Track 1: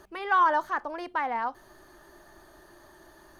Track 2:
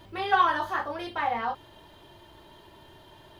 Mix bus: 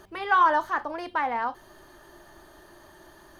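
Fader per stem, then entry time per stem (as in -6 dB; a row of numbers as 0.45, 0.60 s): +2.0, -10.5 dB; 0.00, 0.00 s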